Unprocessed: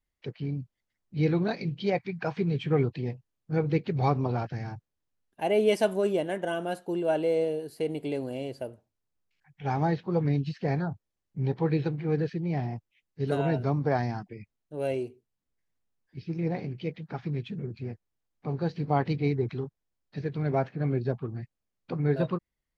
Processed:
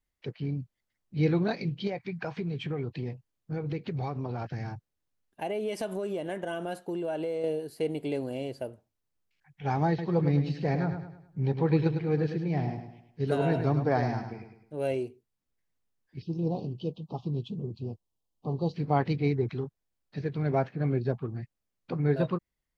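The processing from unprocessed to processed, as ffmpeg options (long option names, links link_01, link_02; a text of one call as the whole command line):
ffmpeg -i in.wav -filter_complex "[0:a]asettb=1/sr,asplit=3[link_01][link_02][link_03];[link_01]atrim=end=1.874[link_04];[link_02]atrim=start=1.87:end=7.44,asetpts=PTS-STARTPTS,afade=type=in:duration=0.004:curve=qsin,afade=type=out:start_time=5.566:duration=0.004:curve=qsin,acompressor=threshold=-29dB:ratio=5:attack=3.2:release=140:knee=1:detection=peak[link_05];[link_03]atrim=start=7.436[link_06];[link_04][link_05]acrossfade=duration=0.004:curve1=hsin:curve2=qsin[link_07];[link_07][link_06]acrossfade=duration=0.004:curve1=qsin:curve2=hsin,asettb=1/sr,asplit=3[link_08][link_09][link_10];[link_08]atrim=end=9.884[link_11];[link_09]atrim=start=9.88:end=14.78,asetpts=PTS-STARTPTS,afade=type=in:duration=0.004:curve=qsin,afade=type=out:start_time=4.896:duration=0.004:curve=qsin,aecho=1:1:104|208|312|416|520:0.398|0.163|0.0669|0.0274|0.0112,atrim=end_sample=216090[link_12];[link_10]atrim=start=14.776[link_13];[link_11][link_12]acrossfade=duration=0.004:curve1=hsin:curve2=qsin[link_14];[link_14][link_13]acrossfade=duration=0.004:curve1=qsin:curve2=hsin,asettb=1/sr,asplit=3[link_15][link_16][link_17];[link_15]atrim=end=16.224[link_18];[link_16]atrim=start=16.22:end=18.74,asetpts=PTS-STARTPTS,afade=type=in:duration=0.004:curve=qsin,afade=type=out:start_time=2.516:duration=0.004:curve=qsin,asuperstop=centerf=1800:order=12:qfactor=1.1[link_19];[link_17]atrim=start=18.736[link_20];[link_18][link_19]acrossfade=duration=0.004:curve1=hsin:curve2=qsin[link_21];[link_21][link_20]acrossfade=duration=0.004:curve1=qsin:curve2=hsin" out.wav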